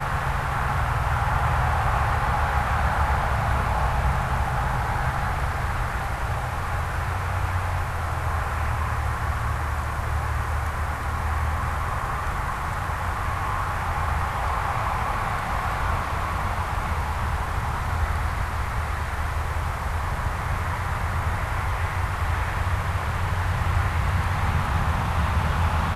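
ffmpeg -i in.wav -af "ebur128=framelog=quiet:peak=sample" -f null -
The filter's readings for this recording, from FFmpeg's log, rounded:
Integrated loudness:
  I:         -25.8 LUFS
  Threshold: -35.8 LUFS
Loudness range:
  LRA:         3.7 LU
  Threshold: -46.0 LUFS
  LRA low:   -27.2 LUFS
  LRA high:  -23.5 LUFS
Sample peak:
  Peak:       -8.5 dBFS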